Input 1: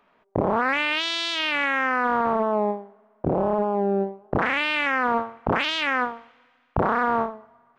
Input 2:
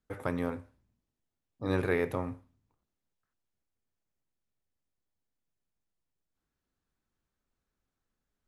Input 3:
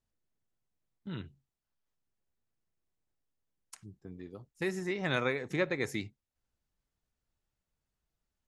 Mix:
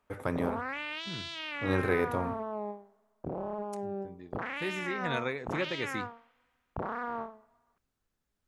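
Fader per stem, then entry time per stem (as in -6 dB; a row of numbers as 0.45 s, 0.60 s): -14.0 dB, +0.5 dB, -2.5 dB; 0.00 s, 0.00 s, 0.00 s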